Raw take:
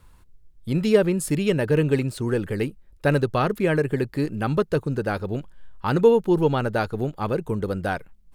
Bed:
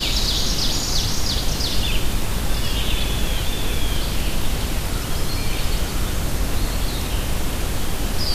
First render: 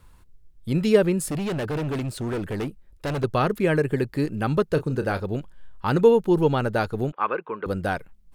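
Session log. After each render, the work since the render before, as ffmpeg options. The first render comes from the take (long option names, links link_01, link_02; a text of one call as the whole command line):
ffmpeg -i in.wav -filter_complex "[0:a]asettb=1/sr,asplit=3[link_01][link_02][link_03];[link_01]atrim=end=1.194[link_04];[link_02]atrim=start=1.19:end=3.24,asetpts=PTS-STARTPTS,afade=type=in:duration=0.004:curve=qsin,afade=type=out:start_time=2.046:duration=0.004:curve=qsin,volume=24.5dB,asoftclip=hard,volume=-24.5dB[link_05];[link_03]atrim=start=3.236[link_06];[link_04][link_05]acrossfade=duration=0.004:curve1=hsin:curve2=qsin[link_07];[link_07][link_06]acrossfade=duration=0.004:curve1=qsin:curve2=hsin,asettb=1/sr,asplit=3[link_08][link_09][link_10];[link_08]atrim=end=4.744[link_11];[link_09]atrim=start=4.74:end=5.2,asetpts=PTS-STARTPTS,afade=type=in:duration=0.004:curve=qsin,afade=type=out:start_time=0.456:duration=0.004:curve=qsin,asplit=2[link_12][link_13];[link_13]adelay=31,volume=-11dB[link_14];[link_12][link_14]amix=inputs=2:normalize=0,atrim=end_sample=20286[link_15];[link_10]atrim=start=5.196[link_16];[link_11][link_15]acrossfade=duration=0.004:curve1=hsin:curve2=qsin[link_17];[link_17][link_16]acrossfade=duration=0.004:curve1=qsin:curve2=hsin,asettb=1/sr,asplit=3[link_18][link_19][link_20];[link_18]atrim=end=7.124[link_21];[link_19]atrim=start=7.12:end=7.66,asetpts=PTS-STARTPTS,afade=type=in:duration=0.004:curve=qsin,afade=type=out:start_time=0.536:duration=0.004:curve=qsin,highpass=450,equalizer=frequency=670:width_type=q:width=4:gain=-4,equalizer=frequency=1100:width_type=q:width=4:gain=9,equalizer=frequency=1500:width_type=q:width=4:gain=7,equalizer=frequency=2500:width_type=q:width=4:gain=6,lowpass=frequency=2900:width=0.5412,lowpass=frequency=2900:width=1.3066[link_22];[link_20]atrim=start=7.656[link_23];[link_21][link_22]acrossfade=duration=0.004:curve1=hsin:curve2=qsin[link_24];[link_24][link_23]acrossfade=duration=0.004:curve1=qsin:curve2=hsin" out.wav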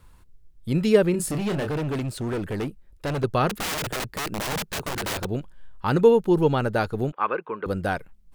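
ffmpeg -i in.wav -filter_complex "[0:a]asettb=1/sr,asplit=3[link_01][link_02][link_03];[link_01]atrim=end=1.114[link_04];[link_02]atrim=start=1.11:end=1.71,asetpts=PTS-STARTPTS,afade=type=in:duration=0.004:curve=qsin,afade=type=out:start_time=0.596:duration=0.004:curve=qsin,asplit=2[link_05][link_06];[link_06]adelay=29,volume=-6dB[link_07];[link_05][link_07]amix=inputs=2:normalize=0,atrim=end_sample=26460[link_08];[link_03]atrim=start=1.706[link_09];[link_04][link_08]acrossfade=duration=0.004:curve1=hsin:curve2=qsin[link_10];[link_10][link_09]acrossfade=duration=0.004:curve1=qsin:curve2=hsin,asettb=1/sr,asplit=3[link_11][link_12][link_13];[link_11]atrim=end=3.494[link_14];[link_12]atrim=start=3.49:end=5.25,asetpts=PTS-STARTPTS,afade=type=in:duration=0.004:curve=qsin,afade=type=out:start_time=1.756:duration=0.004:curve=qsin,aeval=exprs='(mod(15*val(0)+1,2)-1)/15':channel_layout=same[link_15];[link_13]atrim=start=5.246[link_16];[link_14][link_15]acrossfade=duration=0.004:curve1=hsin:curve2=qsin[link_17];[link_17][link_16]acrossfade=duration=0.004:curve1=qsin:curve2=hsin" out.wav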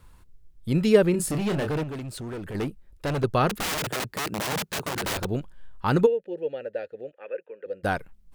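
ffmpeg -i in.wav -filter_complex "[0:a]asettb=1/sr,asplit=3[link_01][link_02][link_03];[link_01]atrim=end=1.834[link_04];[link_02]atrim=start=1.83:end=2.55,asetpts=PTS-STARTPTS,afade=type=in:duration=0.004:curve=qsin,afade=type=out:start_time=0.716:duration=0.004:curve=qsin,acompressor=threshold=-33dB:ratio=6:attack=3.2:release=140:knee=1:detection=peak[link_05];[link_03]atrim=start=2.546[link_06];[link_04][link_05]acrossfade=duration=0.004:curve1=hsin:curve2=qsin[link_07];[link_07][link_06]acrossfade=duration=0.004:curve1=qsin:curve2=hsin,asettb=1/sr,asplit=3[link_08][link_09][link_10];[link_08]atrim=end=3.814[link_11];[link_09]atrim=start=3.81:end=5.05,asetpts=PTS-STARTPTS,afade=type=in:duration=0.004:curve=qsin,afade=type=out:start_time=1.236:duration=0.004:curve=qsin,highpass=92[link_12];[link_10]atrim=start=5.046[link_13];[link_11][link_12]acrossfade=duration=0.004:curve1=hsin:curve2=qsin[link_14];[link_14][link_13]acrossfade=duration=0.004:curve1=qsin:curve2=hsin,asplit=3[link_15][link_16][link_17];[link_15]afade=type=out:start_time=6.05:duration=0.02[link_18];[link_16]asplit=3[link_19][link_20][link_21];[link_19]bandpass=frequency=530:width_type=q:width=8,volume=0dB[link_22];[link_20]bandpass=frequency=1840:width_type=q:width=8,volume=-6dB[link_23];[link_21]bandpass=frequency=2480:width_type=q:width=8,volume=-9dB[link_24];[link_22][link_23][link_24]amix=inputs=3:normalize=0,afade=type=in:start_time=6.05:duration=0.02,afade=type=out:start_time=7.83:duration=0.02[link_25];[link_17]afade=type=in:start_time=7.83:duration=0.02[link_26];[link_18][link_25][link_26]amix=inputs=3:normalize=0" out.wav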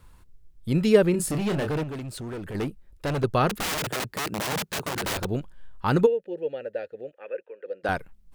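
ffmpeg -i in.wav -filter_complex "[0:a]asettb=1/sr,asplit=3[link_01][link_02][link_03];[link_01]atrim=end=7.414[link_04];[link_02]atrim=start=7.41:end=7.89,asetpts=PTS-STARTPTS,afade=type=in:duration=0.004:curve=qsin,afade=type=out:start_time=0.476:duration=0.004:curve=qsin,highpass=300,lowpass=5800[link_05];[link_03]atrim=start=7.886[link_06];[link_04][link_05]acrossfade=duration=0.004:curve1=hsin:curve2=qsin[link_07];[link_07][link_06]acrossfade=duration=0.004:curve1=qsin:curve2=hsin" out.wav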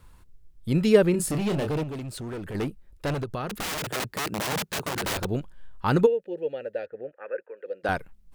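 ffmpeg -i in.wav -filter_complex "[0:a]asettb=1/sr,asplit=3[link_01][link_02][link_03];[link_01]atrim=end=1.484[link_04];[link_02]atrim=start=1.48:end=2.01,asetpts=PTS-STARTPTS,afade=type=in:duration=0.004:curve=qsin,afade=type=out:start_time=0.526:duration=0.004:curve=qsin,equalizer=frequency=1600:width=2.4:gain=-6[link_05];[link_03]atrim=start=2.006[link_06];[link_04][link_05]acrossfade=duration=0.004:curve1=hsin:curve2=qsin[link_07];[link_07][link_06]acrossfade=duration=0.004:curve1=qsin:curve2=hsin,asettb=1/sr,asplit=3[link_08][link_09][link_10];[link_08]atrim=end=3.144[link_11];[link_09]atrim=start=3.14:end=3.94,asetpts=PTS-STARTPTS,afade=type=in:duration=0.004:curve=qsin,afade=type=out:start_time=0.796:duration=0.004:curve=qsin,acompressor=threshold=-28dB:ratio=6:attack=3.2:release=140:knee=1:detection=peak[link_12];[link_10]atrim=start=3.936[link_13];[link_11][link_12]acrossfade=duration=0.004:curve1=hsin:curve2=qsin[link_14];[link_14][link_13]acrossfade=duration=0.004:curve1=qsin:curve2=hsin,asettb=1/sr,asplit=3[link_15][link_16][link_17];[link_15]atrim=end=6.864[link_18];[link_16]atrim=start=6.86:end=7.57,asetpts=PTS-STARTPTS,afade=type=in:duration=0.004:curve=qsin,afade=type=out:start_time=0.706:duration=0.004:curve=qsin,lowpass=frequency=1600:width_type=q:width=2.2[link_19];[link_17]atrim=start=7.566[link_20];[link_18][link_19]acrossfade=duration=0.004:curve1=hsin:curve2=qsin[link_21];[link_21][link_20]acrossfade=duration=0.004:curve1=qsin:curve2=hsin" out.wav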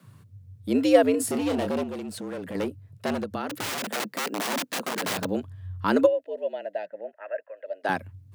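ffmpeg -i in.wav -af "afreqshift=91" out.wav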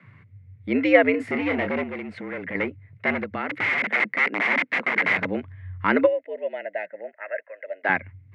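ffmpeg -i in.wav -af "lowpass=frequency=2100:width_type=q:width=11" out.wav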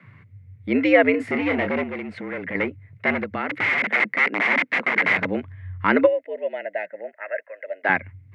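ffmpeg -i in.wav -af "volume=2dB,alimiter=limit=-3dB:level=0:latency=1" out.wav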